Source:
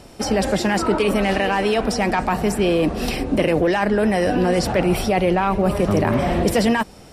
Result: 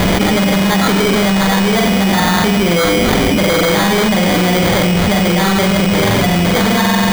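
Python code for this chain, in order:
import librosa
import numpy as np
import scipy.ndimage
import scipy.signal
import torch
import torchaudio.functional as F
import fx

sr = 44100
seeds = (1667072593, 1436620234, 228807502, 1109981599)

p1 = fx.comb_fb(x, sr, f0_hz=100.0, decay_s=0.15, harmonics='all', damping=0.0, mix_pct=70)
p2 = p1 + fx.room_flutter(p1, sr, wall_m=7.9, rt60_s=0.85, dry=0)
p3 = fx.fold_sine(p2, sr, drive_db=11, ceiling_db=-5.5)
p4 = fx.peak_eq(p3, sr, hz=180.0, db=12.0, octaves=0.23)
p5 = fx.sample_hold(p4, sr, seeds[0], rate_hz=2700.0, jitter_pct=0)
p6 = fx.peak_eq(p5, sr, hz=2800.0, db=5.5, octaves=1.7)
p7 = fx.env_flatten(p6, sr, amount_pct=100)
y = p7 * 10.0 ** (-10.5 / 20.0)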